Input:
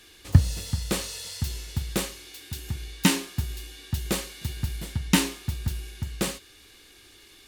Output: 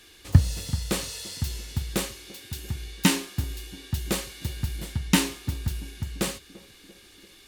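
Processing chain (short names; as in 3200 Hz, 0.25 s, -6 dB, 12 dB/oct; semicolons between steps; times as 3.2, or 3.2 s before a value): narrowing echo 0.34 s, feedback 67%, band-pass 320 Hz, level -18 dB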